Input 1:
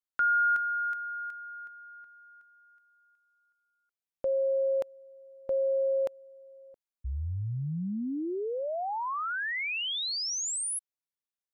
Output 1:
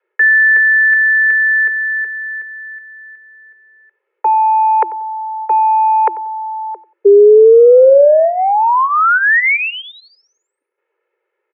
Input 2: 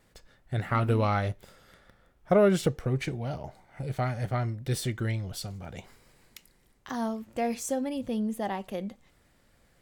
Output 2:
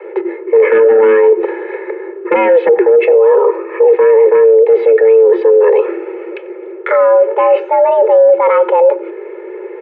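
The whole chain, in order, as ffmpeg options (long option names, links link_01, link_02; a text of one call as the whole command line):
ffmpeg -i in.wav -filter_complex "[0:a]afreqshift=260,aeval=exprs='0.299*sin(PI/2*2.82*val(0)/0.299)':channel_layout=same,aecho=1:1:2.4:0.78,areverse,acompressor=threshold=-24dB:ratio=6:attack=16:release=61:knee=1:detection=rms,areverse,highpass=frequency=180:width_type=q:width=0.5412,highpass=frequency=180:width_type=q:width=1.307,lowpass=frequency=2200:width_type=q:width=0.5176,lowpass=frequency=2200:width_type=q:width=0.7071,lowpass=frequency=2200:width_type=q:width=1.932,afreqshift=76,lowshelf=frequency=550:width_type=q:width=1.5:gain=8.5,asplit=2[link_01][link_02];[link_02]adelay=92,lowpass=frequency=1500:poles=1,volume=-17.5dB,asplit=2[link_03][link_04];[link_04]adelay=92,lowpass=frequency=1500:poles=1,volume=0.24[link_05];[link_03][link_05]amix=inputs=2:normalize=0[link_06];[link_01][link_06]amix=inputs=2:normalize=0,alimiter=level_in=15.5dB:limit=-1dB:release=50:level=0:latency=1,volume=-1dB" out.wav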